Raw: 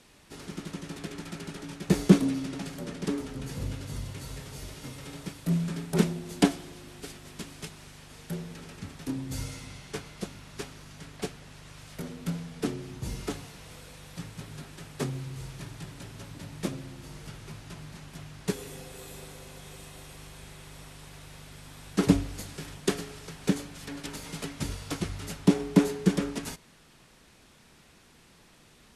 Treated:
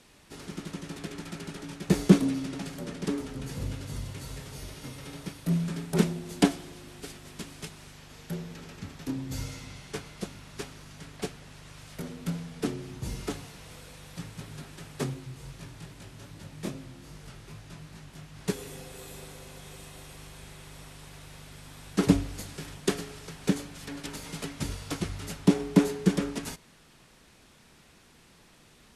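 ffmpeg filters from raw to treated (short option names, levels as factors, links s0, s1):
-filter_complex "[0:a]asettb=1/sr,asplit=3[s0][s1][s2];[s0]atrim=end=4.544[s3];[s1]atrim=start=4.54:end=5.66,asetpts=PTS-STARTPTS,afade=t=in:d=0.004:c=qsin,afade=t=out:st=1.116:d=0.004:c=qsin,bandreject=f=7500:w=12[s4];[s2]atrim=start=5.656[s5];[s3][s4]acrossfade=d=0.004:c1=hsin:c2=qsin[s6];[s6][s5]acrossfade=d=0.004:c1=qsin:c2=hsin,asettb=1/sr,asplit=3[s7][s8][s9];[s7]atrim=end=7.934[s10];[s8]atrim=start=7.93:end=9.77,asetpts=PTS-STARTPTS,afade=t=in:d=0.004:c=qsin,afade=t=out:st=1.836:d=0.004:c=qsin,equalizer=f=9300:w=4.2:g=-7.5[s11];[s9]atrim=start=9.766[s12];[s10][s11]acrossfade=d=0.004:c1=hsin:c2=qsin[s13];[s13][s12]acrossfade=d=0.004:c1=qsin:c2=hsin,asplit=3[s14][s15][s16];[s14]afade=t=out:st=15.13:d=0.02[s17];[s15]flanger=delay=18.5:depth=7.8:speed=2.5,afade=t=in:st=15.13:d=0.02,afade=t=out:st=18.35:d=0.02[s18];[s16]afade=t=in:st=18.35:d=0.02[s19];[s17][s18][s19]amix=inputs=3:normalize=0"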